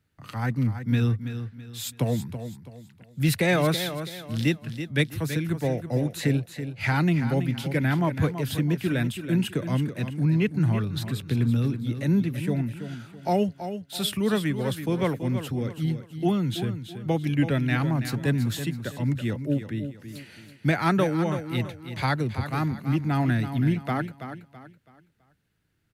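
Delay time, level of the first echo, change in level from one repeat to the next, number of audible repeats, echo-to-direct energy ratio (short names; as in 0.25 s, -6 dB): 0.329 s, -10.0 dB, -9.5 dB, 3, -9.5 dB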